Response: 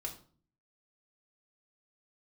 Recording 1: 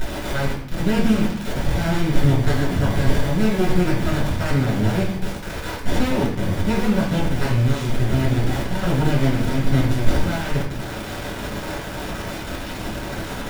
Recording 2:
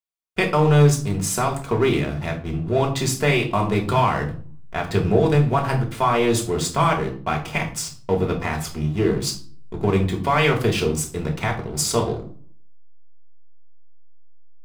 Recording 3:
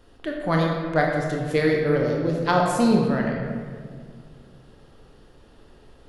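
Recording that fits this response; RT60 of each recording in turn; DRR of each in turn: 2; 0.60, 0.45, 1.9 seconds; −5.5, −0.5, −1.0 decibels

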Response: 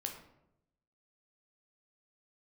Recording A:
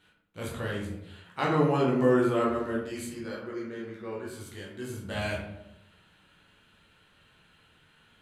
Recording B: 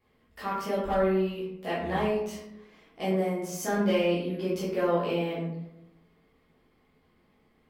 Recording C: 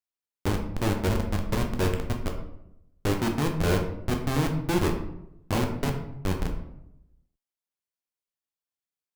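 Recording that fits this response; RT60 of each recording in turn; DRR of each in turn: C; 0.85, 0.85, 0.85 seconds; −4.5, −10.0, 2.5 decibels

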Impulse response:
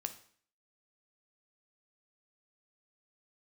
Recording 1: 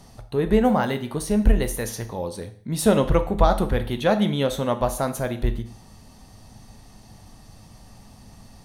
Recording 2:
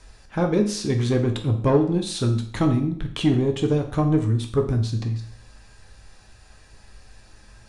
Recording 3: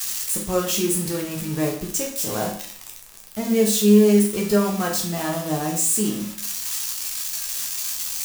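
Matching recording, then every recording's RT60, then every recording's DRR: 1; 0.55, 0.55, 0.55 seconds; 7.5, 3.5, −1.5 decibels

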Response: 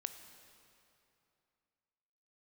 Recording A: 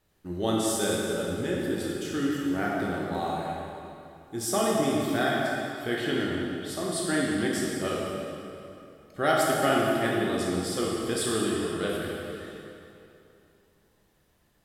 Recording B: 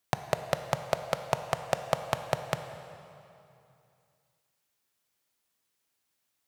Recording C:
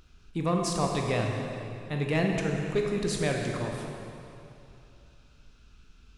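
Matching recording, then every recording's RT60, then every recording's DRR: B; 2.8, 2.8, 2.8 seconds; −4.0, 8.5, 0.5 decibels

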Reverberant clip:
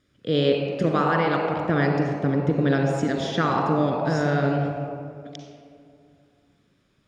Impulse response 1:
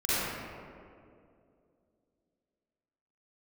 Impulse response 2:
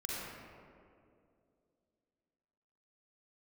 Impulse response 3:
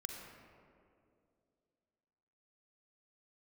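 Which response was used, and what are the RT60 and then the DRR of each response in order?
3; 2.5, 2.5, 2.5 seconds; −13.0, −6.0, 2.0 decibels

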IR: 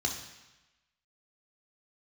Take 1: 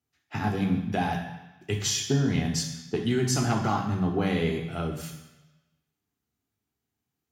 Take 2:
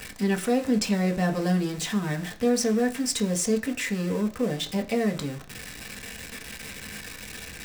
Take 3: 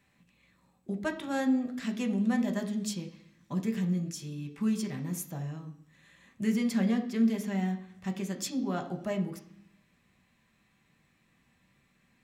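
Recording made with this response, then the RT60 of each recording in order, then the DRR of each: 1; 1.0, 0.40, 0.65 seconds; 1.0, 3.0, 3.5 decibels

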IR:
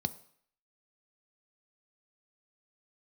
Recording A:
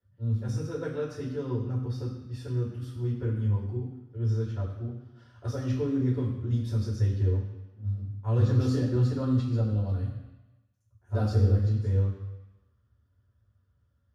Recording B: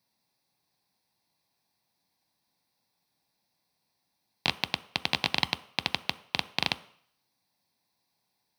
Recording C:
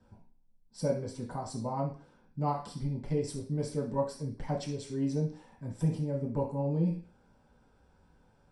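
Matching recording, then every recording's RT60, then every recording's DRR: B; 1.0, 0.60, 0.45 seconds; −7.5, 12.0, −5.5 decibels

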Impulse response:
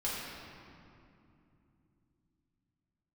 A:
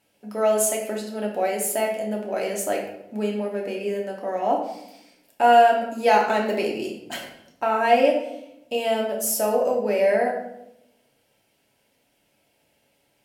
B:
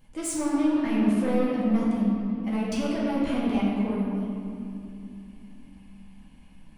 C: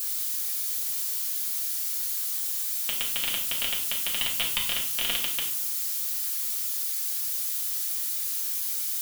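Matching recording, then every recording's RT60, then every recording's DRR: B; 0.85, 2.8, 0.60 seconds; −1.5, −8.0, −3.5 decibels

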